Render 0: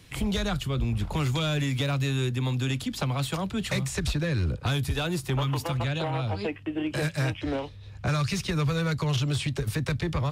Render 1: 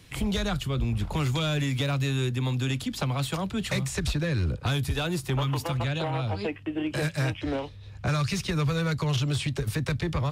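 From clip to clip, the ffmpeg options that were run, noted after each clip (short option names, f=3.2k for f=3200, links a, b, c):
-af anull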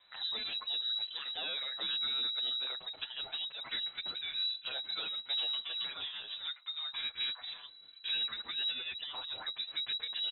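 -filter_complex "[0:a]lowpass=f=3.4k:t=q:w=0.5098,lowpass=f=3.4k:t=q:w=0.6013,lowpass=f=3.4k:t=q:w=0.9,lowpass=f=3.4k:t=q:w=2.563,afreqshift=-4000,asplit=2[a][b];[b]adelay=7.3,afreqshift=0.64[c];[a][c]amix=inputs=2:normalize=1,volume=-7.5dB"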